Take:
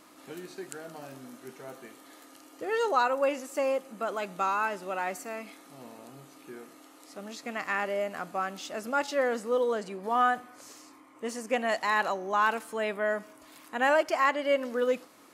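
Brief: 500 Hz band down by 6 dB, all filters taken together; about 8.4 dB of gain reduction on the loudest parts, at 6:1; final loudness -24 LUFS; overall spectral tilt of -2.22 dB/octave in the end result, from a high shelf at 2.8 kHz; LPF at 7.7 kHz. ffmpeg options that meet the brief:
-af "lowpass=7700,equalizer=f=500:t=o:g=-7.5,highshelf=f=2800:g=8,acompressor=threshold=0.0355:ratio=6,volume=3.55"

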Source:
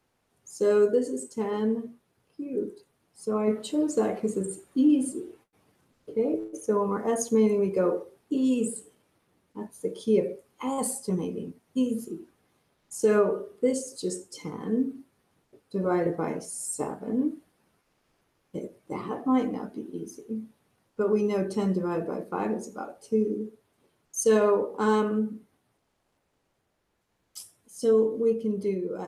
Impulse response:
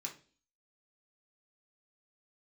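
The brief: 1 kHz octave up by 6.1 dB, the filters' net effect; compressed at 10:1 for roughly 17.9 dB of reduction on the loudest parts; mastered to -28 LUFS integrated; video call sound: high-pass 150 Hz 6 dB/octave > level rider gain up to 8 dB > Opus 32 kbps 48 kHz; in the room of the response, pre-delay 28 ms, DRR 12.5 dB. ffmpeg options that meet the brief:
-filter_complex "[0:a]equalizer=f=1000:t=o:g=7.5,acompressor=threshold=0.0178:ratio=10,asplit=2[s0][s1];[1:a]atrim=start_sample=2205,adelay=28[s2];[s1][s2]afir=irnorm=-1:irlink=0,volume=0.299[s3];[s0][s3]amix=inputs=2:normalize=0,highpass=f=150:p=1,dynaudnorm=m=2.51,volume=2.37" -ar 48000 -c:a libopus -b:a 32k

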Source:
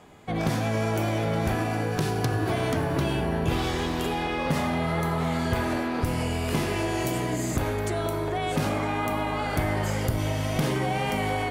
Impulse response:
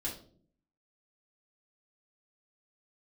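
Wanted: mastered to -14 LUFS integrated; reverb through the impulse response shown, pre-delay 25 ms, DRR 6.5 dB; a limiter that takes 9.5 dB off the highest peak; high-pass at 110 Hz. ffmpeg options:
-filter_complex "[0:a]highpass=110,alimiter=limit=0.075:level=0:latency=1,asplit=2[s0][s1];[1:a]atrim=start_sample=2205,adelay=25[s2];[s1][s2]afir=irnorm=-1:irlink=0,volume=0.398[s3];[s0][s3]amix=inputs=2:normalize=0,volume=5.62"

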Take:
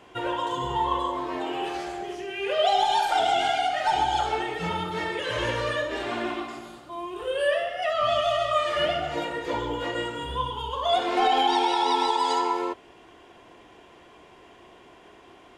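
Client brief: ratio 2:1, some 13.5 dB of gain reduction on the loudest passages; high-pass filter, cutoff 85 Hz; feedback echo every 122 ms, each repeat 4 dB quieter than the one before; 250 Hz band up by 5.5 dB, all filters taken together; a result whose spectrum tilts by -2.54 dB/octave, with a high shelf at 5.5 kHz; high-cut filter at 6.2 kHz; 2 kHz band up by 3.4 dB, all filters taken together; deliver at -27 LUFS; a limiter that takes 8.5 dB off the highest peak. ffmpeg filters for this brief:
-af "highpass=85,lowpass=6200,equalizer=f=250:t=o:g=8.5,equalizer=f=2000:t=o:g=5,highshelf=f=5500:g=-7.5,acompressor=threshold=0.00708:ratio=2,alimiter=level_in=2.37:limit=0.0631:level=0:latency=1,volume=0.422,aecho=1:1:122|244|366|488|610|732|854|976|1098:0.631|0.398|0.25|0.158|0.0994|0.0626|0.0394|0.0249|0.0157,volume=3.55"

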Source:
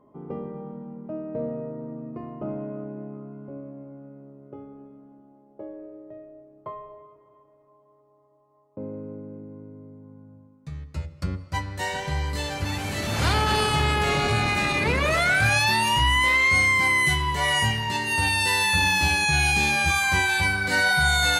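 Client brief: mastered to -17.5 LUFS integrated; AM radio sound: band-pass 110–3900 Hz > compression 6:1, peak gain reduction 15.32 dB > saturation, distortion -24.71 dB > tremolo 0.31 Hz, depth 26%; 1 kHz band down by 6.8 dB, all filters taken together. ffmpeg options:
-af "highpass=110,lowpass=3900,equalizer=f=1000:t=o:g=-8.5,acompressor=threshold=0.0158:ratio=6,asoftclip=threshold=0.0376,tremolo=f=0.31:d=0.26,volume=13.3"

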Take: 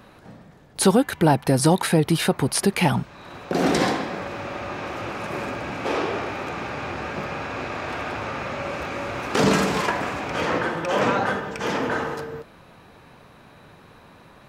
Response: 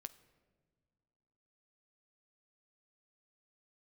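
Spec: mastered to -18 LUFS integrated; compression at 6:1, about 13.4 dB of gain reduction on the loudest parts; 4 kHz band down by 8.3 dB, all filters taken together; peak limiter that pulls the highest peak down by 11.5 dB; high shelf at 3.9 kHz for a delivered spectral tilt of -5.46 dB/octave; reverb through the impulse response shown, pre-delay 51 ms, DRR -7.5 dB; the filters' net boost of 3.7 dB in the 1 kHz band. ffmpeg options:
-filter_complex "[0:a]equalizer=f=1000:t=o:g=5.5,highshelf=f=3900:g=-6.5,equalizer=f=4000:t=o:g=-7.5,acompressor=threshold=0.0501:ratio=6,alimiter=limit=0.0631:level=0:latency=1,asplit=2[s0][s1];[1:a]atrim=start_sample=2205,adelay=51[s2];[s1][s2]afir=irnorm=-1:irlink=0,volume=4.22[s3];[s0][s3]amix=inputs=2:normalize=0,volume=2.37"

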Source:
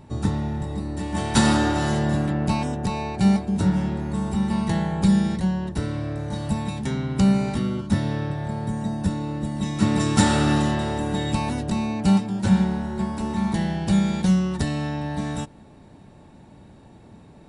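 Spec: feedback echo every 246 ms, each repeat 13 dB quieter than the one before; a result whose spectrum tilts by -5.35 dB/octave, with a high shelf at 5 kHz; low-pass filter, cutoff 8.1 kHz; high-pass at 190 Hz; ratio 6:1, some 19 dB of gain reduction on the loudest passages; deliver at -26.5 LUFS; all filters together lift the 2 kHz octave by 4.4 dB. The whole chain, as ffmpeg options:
-af "highpass=190,lowpass=8100,equalizer=f=2000:t=o:g=6.5,highshelf=f=5000:g=-7.5,acompressor=threshold=0.0141:ratio=6,aecho=1:1:246|492|738:0.224|0.0493|0.0108,volume=4.47"

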